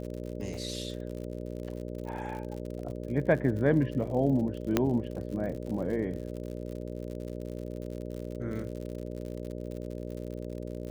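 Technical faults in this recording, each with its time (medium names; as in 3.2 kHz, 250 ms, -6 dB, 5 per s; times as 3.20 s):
buzz 60 Hz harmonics 10 -38 dBFS
crackle 77 per s -38 dBFS
0.54 s: dropout 2.2 ms
4.77 s: pop -10 dBFS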